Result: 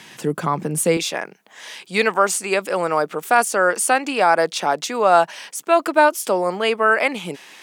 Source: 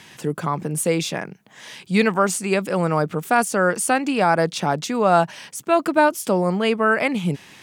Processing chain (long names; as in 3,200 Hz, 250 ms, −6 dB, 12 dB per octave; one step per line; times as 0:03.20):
high-pass filter 150 Hz 12 dB per octave, from 0:00.97 410 Hz
level +3 dB